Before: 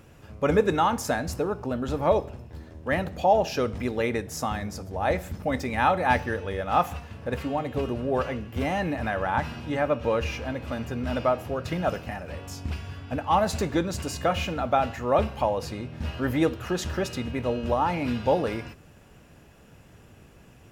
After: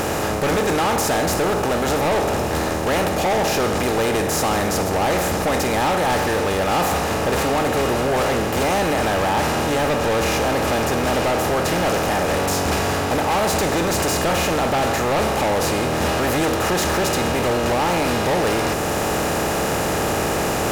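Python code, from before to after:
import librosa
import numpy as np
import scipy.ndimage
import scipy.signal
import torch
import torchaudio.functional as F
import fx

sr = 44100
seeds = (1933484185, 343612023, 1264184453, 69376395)

p1 = fx.bin_compress(x, sr, power=0.4)
p2 = fx.high_shelf(p1, sr, hz=5700.0, db=10.5)
p3 = fx.rider(p2, sr, range_db=10, speed_s=0.5)
p4 = p2 + (p3 * librosa.db_to_amplitude(-2.0))
p5 = np.clip(10.0 ** (14.0 / 20.0) * p4, -1.0, 1.0) / 10.0 ** (14.0 / 20.0)
y = p5 * librosa.db_to_amplitude(-2.5)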